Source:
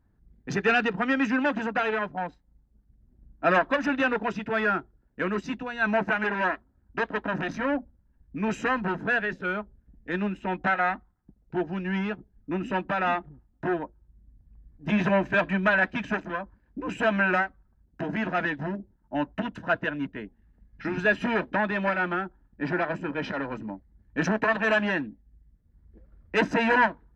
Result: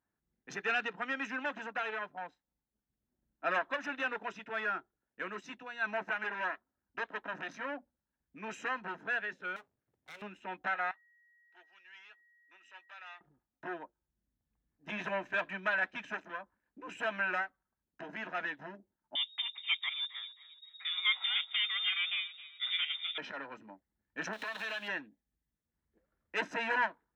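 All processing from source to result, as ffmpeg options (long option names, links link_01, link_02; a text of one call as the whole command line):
ffmpeg -i in.wav -filter_complex "[0:a]asettb=1/sr,asplit=3[link_01][link_02][link_03];[link_01]atrim=end=9.564[link_04];[link_02]atrim=start=9.56:end=10.22,asetpts=PTS-STARTPTS,afade=type=in:duration=0.004:curve=qsin,afade=type=out:start_time=0.656:duration=0.004:curve=qsin,acompressor=threshold=-34dB:ratio=2.5:attack=3.2:release=140:knee=1:detection=peak,aeval=exprs='abs(val(0))':channel_layout=same[link_05];[link_03]atrim=start=10.216[link_06];[link_04][link_05]acrossfade=duration=0.004:curve1=hsin:curve2=qsin[link_07];[link_07][link_06]acrossfade=duration=0.004:curve1=qsin:curve2=hsin,asettb=1/sr,asplit=3[link_08][link_09][link_10];[link_08]atrim=end=10.914[link_11];[link_09]atrim=start=10.91:end=13.21,asetpts=PTS-STARTPTS,afade=type=in:duration=0.004:curve=qsin,afade=type=out:start_time=2.296:duration=0.004:curve=qsin,aderivative,aeval=exprs='val(0)+0.00141*sin(2*PI*1900*n/s)':channel_layout=same,highpass=320,lowpass=5800[link_12];[link_10]atrim=start=13.206[link_13];[link_11][link_12]acrossfade=duration=0.004:curve1=hsin:curve2=qsin[link_14];[link_14][link_13]acrossfade=duration=0.004:curve1=qsin:curve2=hsin,asettb=1/sr,asplit=3[link_15][link_16][link_17];[link_15]atrim=end=19.154[link_18];[link_16]atrim=start=19.15:end=23.18,asetpts=PTS-STARTPTS,afade=type=in:duration=0.004:curve=qsin,afade=type=out:start_time=4.026:duration=0.004:curve=qsin,lowshelf=frequency=61:gain=11,aecho=1:1:266|532|798:0.141|0.048|0.0163,atrim=end_sample=177723,lowpass=frequency=3200:width_type=q:width=0.5098,lowpass=frequency=3200:width_type=q:width=0.6013,lowpass=frequency=3200:width_type=q:width=0.9,lowpass=frequency=3200:width_type=q:width=2.563,afreqshift=-3800[link_19];[link_17]atrim=start=23.176[link_20];[link_18][link_19]acrossfade=duration=0.004:curve1=hsin:curve2=qsin[link_21];[link_21][link_20]acrossfade=duration=0.004:curve1=qsin:curve2=hsin,asettb=1/sr,asplit=3[link_22][link_23][link_24];[link_22]atrim=end=24.334[link_25];[link_23]atrim=start=24.33:end=24.88,asetpts=PTS-STARTPTS,afade=type=in:duration=0.004:curve=qsin,afade=type=out:start_time=0.546:duration=0.004:curve=qsin,aeval=exprs='val(0)+0.5*0.0112*sgn(val(0))':channel_layout=same,equalizer=frequency=3900:width_type=o:width=1:gain=15,acompressor=threshold=-26dB:ratio=6:attack=3.2:release=140:knee=1:detection=peak[link_26];[link_24]atrim=start=24.876[link_27];[link_25][link_26]acrossfade=duration=0.004:curve1=hsin:curve2=qsin[link_28];[link_28][link_27]acrossfade=duration=0.004:curve1=qsin:curve2=hsin,highpass=frequency=970:poles=1,bandreject=frequency=4700:width=9.2,volume=-7dB" out.wav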